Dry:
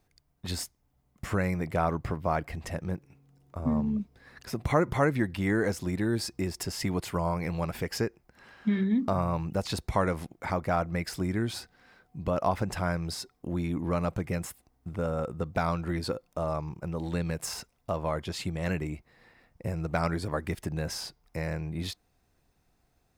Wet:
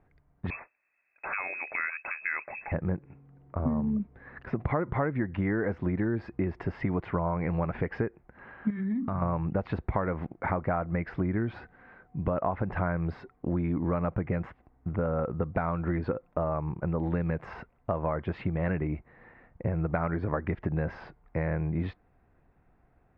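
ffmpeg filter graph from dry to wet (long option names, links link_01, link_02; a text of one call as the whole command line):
ffmpeg -i in.wav -filter_complex "[0:a]asettb=1/sr,asplit=3[link_01][link_02][link_03];[link_01]atrim=end=0.504[link_04];[link_02]atrim=start=0.5:end=2.72,asetpts=PTS-STARTPTS,afade=type=in:duration=0.004:curve=qsin,afade=type=out:start_time=2.216:duration=0.004:curve=qsin,highpass=85,lowpass=frequency=2300:width_type=q:width=0.5098,lowpass=frequency=2300:width_type=q:width=0.6013,lowpass=frequency=2300:width_type=q:width=0.9,lowpass=frequency=2300:width_type=q:width=2.563,afreqshift=-2700[link_05];[link_03]atrim=start=2.716[link_06];[link_04][link_05]acrossfade=duration=0.004:curve1=hsin:curve2=qsin[link_07];[link_07][link_06]acrossfade=duration=0.004:curve1=qsin:curve2=hsin,asettb=1/sr,asplit=3[link_08][link_09][link_10];[link_08]atrim=end=8.704[link_11];[link_09]atrim=start=8.7:end=9.22,asetpts=PTS-STARTPTS,afade=type=in:duration=0.004:curve=qsin,afade=type=out:start_time=0.516:duration=0.004:curve=qsin,equalizer=frequency=520:width_type=o:width=1.3:gain=-11,acompressor=threshold=-32dB:ratio=5:attack=3.2:release=140:knee=1:detection=peak[link_12];[link_10]atrim=start=9.216[link_13];[link_11][link_12]acrossfade=duration=0.004:curve1=hsin:curve2=qsin[link_14];[link_14][link_13]acrossfade=duration=0.004:curve1=qsin:curve2=hsin,acompressor=threshold=-31dB:ratio=6,lowpass=frequency=2000:width=0.5412,lowpass=frequency=2000:width=1.3066,volume=6dB" out.wav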